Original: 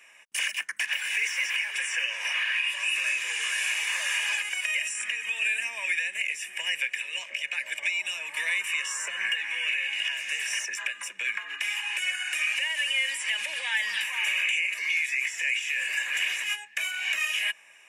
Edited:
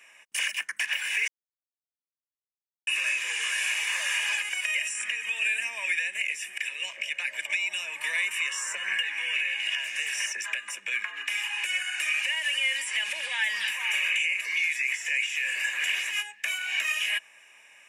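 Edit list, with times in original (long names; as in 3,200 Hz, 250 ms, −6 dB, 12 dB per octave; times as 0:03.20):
0:01.28–0:02.87: silence
0:06.58–0:06.91: remove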